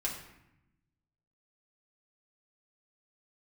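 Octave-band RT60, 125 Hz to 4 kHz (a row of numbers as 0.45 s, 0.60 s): 1.6 s, 1.4 s, 0.80 s, 0.85 s, 0.85 s, 0.60 s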